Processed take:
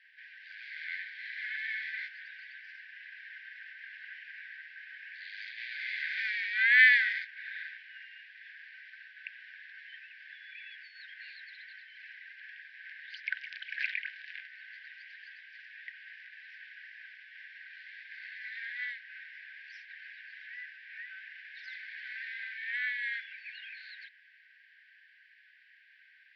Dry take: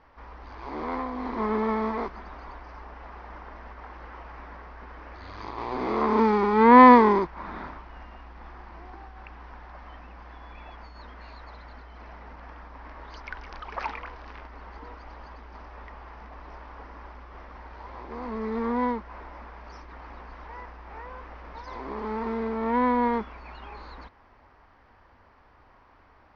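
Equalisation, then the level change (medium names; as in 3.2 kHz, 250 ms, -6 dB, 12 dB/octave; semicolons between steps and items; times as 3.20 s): brick-wall FIR high-pass 1.5 kHz; low-pass 3.9 kHz 24 dB/octave; +6.5 dB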